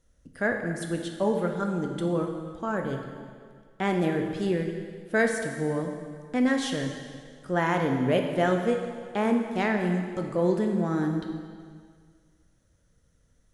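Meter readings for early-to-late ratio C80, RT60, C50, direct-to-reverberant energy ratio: 6.5 dB, 1.9 s, 5.0 dB, 3.0 dB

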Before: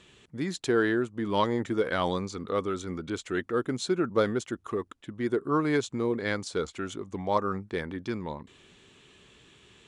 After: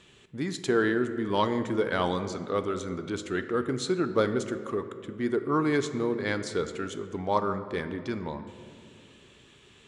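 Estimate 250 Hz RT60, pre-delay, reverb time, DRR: 2.9 s, 5 ms, 2.2 s, 9.0 dB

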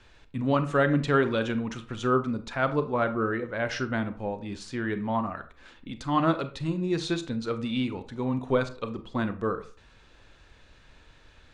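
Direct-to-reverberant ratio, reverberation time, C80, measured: 9.5 dB, 0.45 s, 18.5 dB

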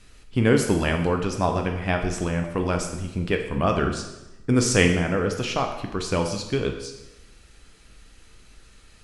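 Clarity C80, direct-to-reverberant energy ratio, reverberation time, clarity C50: 9.5 dB, 3.5 dB, 1.0 s, 7.0 dB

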